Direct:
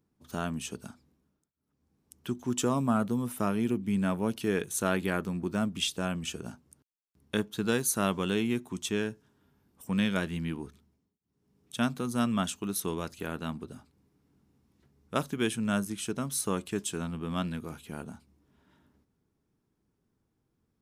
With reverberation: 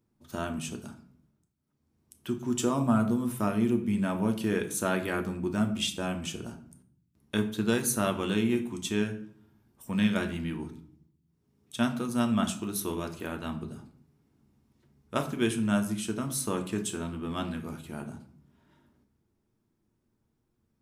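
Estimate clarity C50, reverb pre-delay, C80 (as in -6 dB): 12.0 dB, 3 ms, 15.5 dB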